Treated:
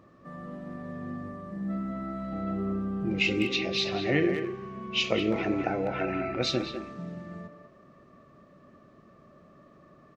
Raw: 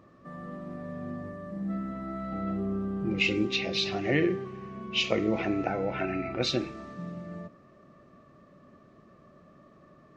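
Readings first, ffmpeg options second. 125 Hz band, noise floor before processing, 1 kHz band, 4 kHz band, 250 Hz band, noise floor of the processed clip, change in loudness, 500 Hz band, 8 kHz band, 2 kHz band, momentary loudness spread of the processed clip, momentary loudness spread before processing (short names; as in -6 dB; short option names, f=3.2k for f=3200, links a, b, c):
0.0 dB, -57 dBFS, +1.0 dB, +0.5 dB, +0.5 dB, -57 dBFS, +0.5 dB, +0.5 dB, n/a, +0.5 dB, 15 LU, 14 LU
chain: -filter_complex "[0:a]asplit=2[a][b];[b]adelay=200,highpass=300,lowpass=3.4k,asoftclip=type=hard:threshold=-19dB,volume=-7dB[c];[a][c]amix=inputs=2:normalize=0"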